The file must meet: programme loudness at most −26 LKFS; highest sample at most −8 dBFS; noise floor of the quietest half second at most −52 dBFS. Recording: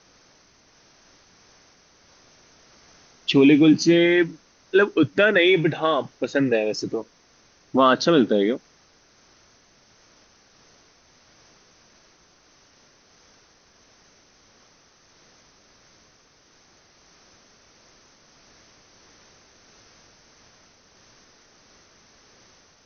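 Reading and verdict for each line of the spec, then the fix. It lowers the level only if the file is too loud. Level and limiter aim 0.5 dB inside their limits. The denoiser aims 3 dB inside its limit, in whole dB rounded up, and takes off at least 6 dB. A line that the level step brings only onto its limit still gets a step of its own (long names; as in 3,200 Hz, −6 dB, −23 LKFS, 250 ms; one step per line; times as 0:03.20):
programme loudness −19.5 LKFS: out of spec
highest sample −4.0 dBFS: out of spec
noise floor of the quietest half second −58 dBFS: in spec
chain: level −7 dB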